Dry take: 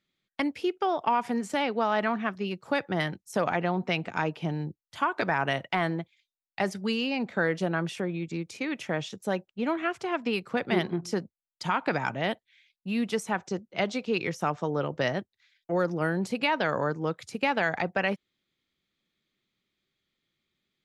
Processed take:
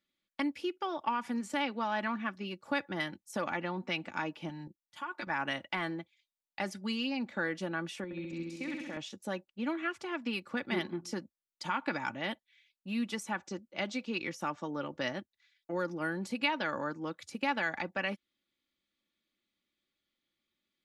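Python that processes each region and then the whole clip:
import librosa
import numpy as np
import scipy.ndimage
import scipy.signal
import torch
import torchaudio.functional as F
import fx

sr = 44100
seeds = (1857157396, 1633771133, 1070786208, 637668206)

y = fx.chain(x, sr, fx.peak_eq(hz=470.0, db=-5.5, octaves=1.4),
    fx.comb(ms=5.6, depth=0.42),
    fx.level_steps(step_db=11), at=(4.49, 5.3))
y = fx.chain(y, sr, fx.highpass(hz=49.0, slope=12),
    fx.level_steps(step_db=17),
    fx.room_flutter(wall_m=11.3, rt60_s=1.1), at=(8.04, 8.97))
y = fx.low_shelf(y, sr, hz=120.0, db=-5.0)
y = y + 0.53 * np.pad(y, (int(3.5 * sr / 1000.0), 0))[:len(y)]
y = fx.dynamic_eq(y, sr, hz=580.0, q=1.4, threshold_db=-40.0, ratio=4.0, max_db=-6)
y = y * librosa.db_to_amplitude(-5.5)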